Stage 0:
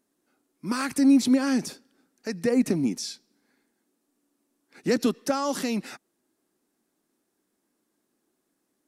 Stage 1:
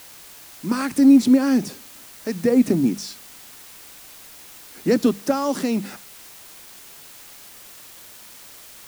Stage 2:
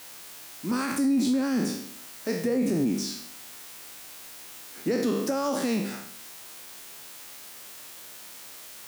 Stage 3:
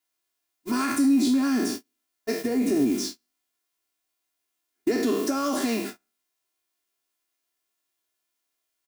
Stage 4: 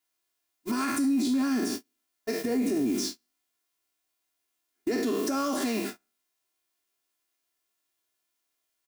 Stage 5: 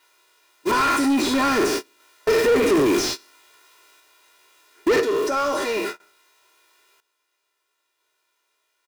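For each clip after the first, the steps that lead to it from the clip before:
tilt shelving filter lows +3.5 dB; mains-hum notches 50/100/150/200 Hz; in parallel at −7.5 dB: bit-depth reduction 6 bits, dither triangular
peak hold with a decay on every bin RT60 0.71 s; low-shelf EQ 94 Hz −11.5 dB; brickwall limiter −15 dBFS, peak gain reduction 9 dB; level −3 dB
noise gate −31 dBFS, range −39 dB; comb filter 2.9 ms, depth 98%
brickwall limiter −20 dBFS, peak gain reduction 6.5 dB
sample-and-hold tremolo 1 Hz, depth 90%; comb filter 2.1 ms, depth 75%; mid-hump overdrive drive 32 dB, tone 1,800 Hz, clips at −18 dBFS; level +7.5 dB

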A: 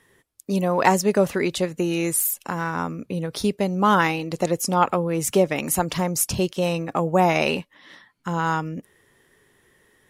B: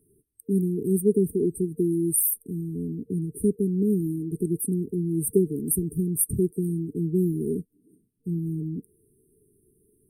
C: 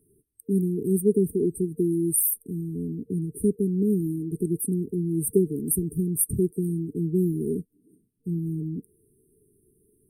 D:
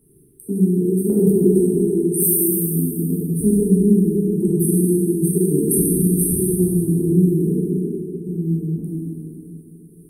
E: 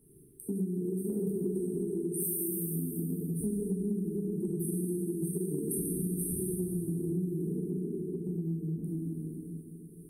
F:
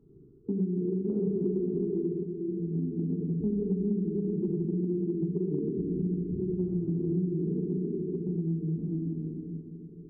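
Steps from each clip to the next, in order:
brick-wall band-stop 460–8,300 Hz
no processing that can be heard
in parallel at −0.5 dB: downward compressor, threshold −33 dBFS, peak gain reduction 16.5 dB; on the sum: shaped tremolo saw down 0.91 Hz, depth 55%; dense smooth reverb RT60 3.2 s, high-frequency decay 0.7×, DRR −8.5 dB
downward compressor 4 to 1, threshold −27 dBFS, peak gain reduction 14.5 dB; level −5 dB
linear-phase brick-wall low-pass 1,500 Hz; level +3.5 dB

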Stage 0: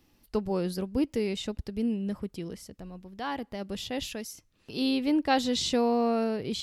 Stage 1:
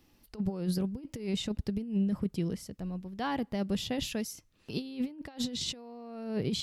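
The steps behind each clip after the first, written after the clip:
compressor whose output falls as the input rises −32 dBFS, ratio −0.5
dynamic equaliser 150 Hz, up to +8 dB, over −47 dBFS, Q 0.88
level −4 dB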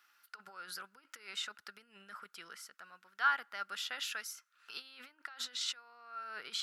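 high-pass with resonance 1,400 Hz, resonance Q 11
level −3 dB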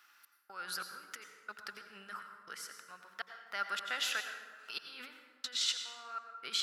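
gate pattern "xxx...xxxx.x" 182 BPM −60 dB
dense smooth reverb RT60 1.6 s, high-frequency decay 0.5×, pre-delay 75 ms, DRR 6 dB
level +4.5 dB

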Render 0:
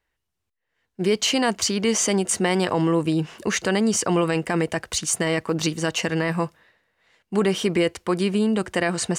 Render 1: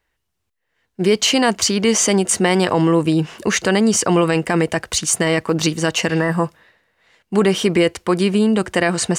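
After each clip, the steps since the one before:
healed spectral selection 0:06.12–0:06.43, 2,000–6,500 Hz both
level +5.5 dB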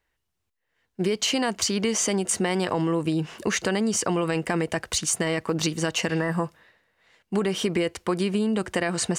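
downward compressor, threshold −16 dBFS, peak gain reduction 6.5 dB
level −4.5 dB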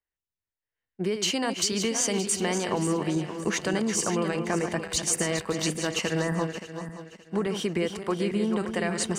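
feedback delay that plays each chunk backwards 287 ms, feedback 63%, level −7 dB
multiband upward and downward expander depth 40%
level −3 dB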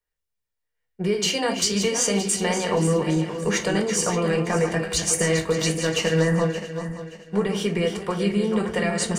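convolution reverb RT60 0.30 s, pre-delay 4 ms, DRR 3 dB
level +1.5 dB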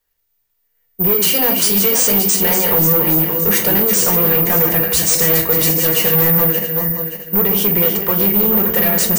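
soft clipping −24 dBFS, distortion −9 dB
bad sample-rate conversion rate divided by 3×, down none, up zero stuff
level +9 dB

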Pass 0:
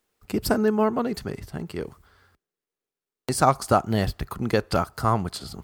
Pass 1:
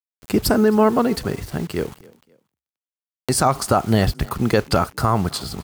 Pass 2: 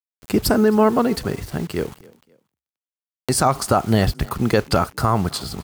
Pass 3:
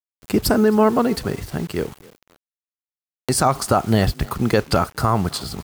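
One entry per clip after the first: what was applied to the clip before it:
bit reduction 8 bits; brickwall limiter −13.5 dBFS, peak gain reduction 9.5 dB; echo with shifted repeats 265 ms, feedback 33%, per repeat +33 Hz, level −23.5 dB; level +7.5 dB
no processing that can be heard
bit reduction 8 bits

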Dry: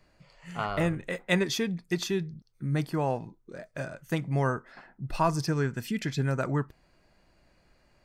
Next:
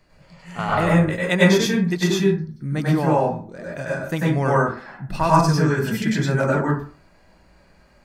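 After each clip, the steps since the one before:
convolution reverb RT60 0.40 s, pre-delay 87 ms, DRR −5.5 dB
level +3.5 dB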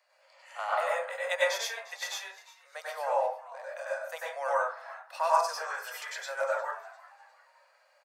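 Butterworth high-pass 510 Hz 96 dB per octave
dynamic equaliser 2,800 Hz, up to −3 dB, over −39 dBFS, Q 0.82
echo with shifted repeats 352 ms, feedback 38%, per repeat +130 Hz, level −19 dB
level −7 dB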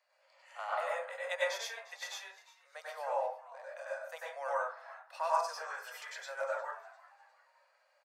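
high-shelf EQ 9,800 Hz −5.5 dB
level −6 dB

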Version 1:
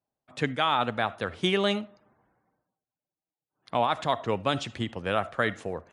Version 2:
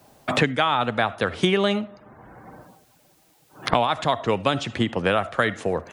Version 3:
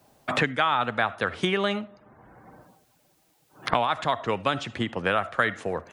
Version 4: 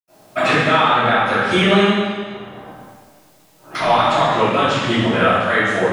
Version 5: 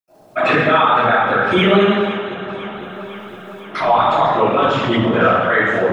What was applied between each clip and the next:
multiband upward and downward compressor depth 100%; level +4.5 dB
dynamic equaliser 1,500 Hz, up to +6 dB, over −34 dBFS, Q 0.83; level −6 dB
brickwall limiter −15.5 dBFS, peak gain reduction 8.5 dB; convolution reverb RT60 1.6 s, pre-delay 77 ms; level +8.5 dB
spectral envelope exaggerated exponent 1.5; delay that swaps between a low-pass and a high-pass 254 ms, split 1,300 Hz, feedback 81%, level −12 dB; level +1 dB

